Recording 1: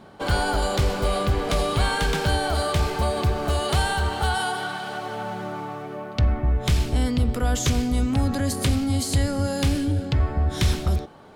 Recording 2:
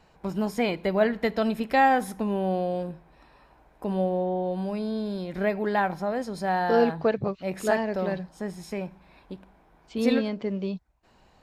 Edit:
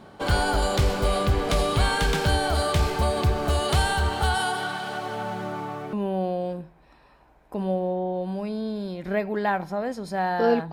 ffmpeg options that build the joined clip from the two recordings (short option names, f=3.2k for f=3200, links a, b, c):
-filter_complex "[0:a]apad=whole_dur=10.72,atrim=end=10.72,atrim=end=5.932[a];[1:a]atrim=start=2.228:end=7.02[b];[a][b]acrossfade=d=0.004:c1=hsin:c2=hsin"